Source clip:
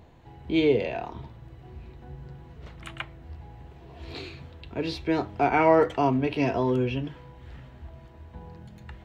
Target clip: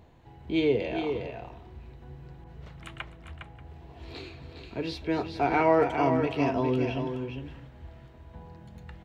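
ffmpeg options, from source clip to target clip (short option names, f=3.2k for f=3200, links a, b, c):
-filter_complex "[0:a]aecho=1:1:257|409|585:0.141|0.473|0.106,asettb=1/sr,asplit=3[a][b][c];[a]atrim=end=2.444[d];[b]atrim=start=2.44:end=4.64,asetpts=PTS-STARTPTS,afade=t=in:d=0.004:c=qsin,afade=t=out:st=2.196:d=0.004:c=qsin,adynamicequalizer=threshold=0.00251:dfrequency=2200:dqfactor=0.7:tfrequency=2200:tqfactor=0.7:attack=5:release=100:ratio=0.375:range=2.5:mode=cutabove:tftype=highshelf[e];[c]atrim=start=4.636[f];[d][e]acrossfade=d=0.004:c1=hsin:c2=qsin[g];[g][f]acrossfade=d=0.004:c1=qsin:c2=hsin,volume=-3dB"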